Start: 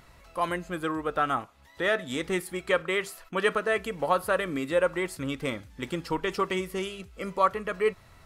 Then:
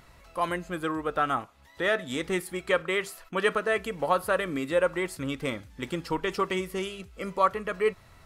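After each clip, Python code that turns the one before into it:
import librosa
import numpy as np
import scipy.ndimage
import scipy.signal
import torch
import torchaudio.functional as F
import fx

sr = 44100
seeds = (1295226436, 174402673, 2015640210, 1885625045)

y = x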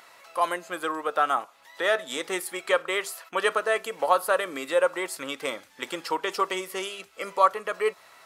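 y = scipy.signal.sosfilt(scipy.signal.butter(2, 590.0, 'highpass', fs=sr, output='sos'), x)
y = fx.dynamic_eq(y, sr, hz=2100.0, q=0.9, threshold_db=-41.0, ratio=4.0, max_db=-6)
y = y * librosa.db_to_amplitude(6.5)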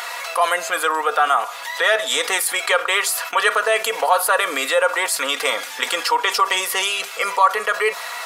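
y = scipy.signal.sosfilt(scipy.signal.butter(2, 650.0, 'highpass', fs=sr, output='sos'), x)
y = y + 0.53 * np.pad(y, (int(4.2 * sr / 1000.0), 0))[:len(y)]
y = fx.env_flatten(y, sr, amount_pct=50)
y = y * librosa.db_to_amplitude(3.0)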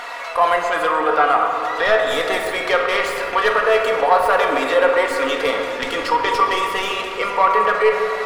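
y = fx.self_delay(x, sr, depth_ms=0.079)
y = fx.riaa(y, sr, side='playback')
y = fx.room_shoebox(y, sr, seeds[0], volume_m3=210.0, walls='hard', distance_m=0.4)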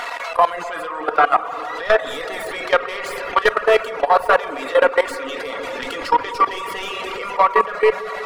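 y = fx.dereverb_blind(x, sr, rt60_s=0.51)
y = fx.level_steps(y, sr, step_db=16)
y = y * librosa.db_to_amplitude(4.5)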